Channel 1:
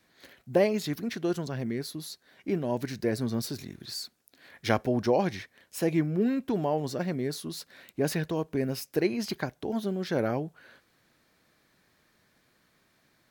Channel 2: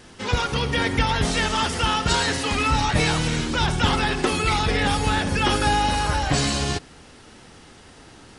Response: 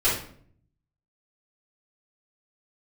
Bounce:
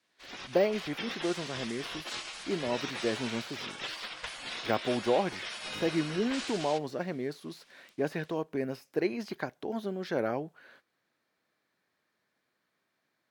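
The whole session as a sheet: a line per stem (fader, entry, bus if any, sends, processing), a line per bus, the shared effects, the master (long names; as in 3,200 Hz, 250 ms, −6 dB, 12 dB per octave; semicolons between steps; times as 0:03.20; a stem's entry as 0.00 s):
0.0 dB, 0.00 s, no send, de-essing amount 100%; high-pass filter 360 Hz 6 dB per octave
−16.5 dB, 0.00 s, no send, gate on every frequency bin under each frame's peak −15 dB weak; parametric band 3,100 Hz +6 dB 2.1 octaves; automatic gain control gain up to 4.5 dB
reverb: not used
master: noise gate −59 dBFS, range −9 dB; high-shelf EQ 4,500 Hz −8 dB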